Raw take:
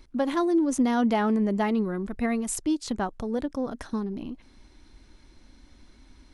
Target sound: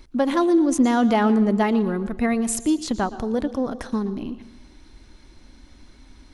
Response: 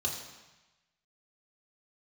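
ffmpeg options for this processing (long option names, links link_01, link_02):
-filter_complex "[0:a]asplit=2[link_01][link_02];[1:a]atrim=start_sample=2205,adelay=116[link_03];[link_02][link_03]afir=irnorm=-1:irlink=0,volume=-19.5dB[link_04];[link_01][link_04]amix=inputs=2:normalize=0,volume=5dB"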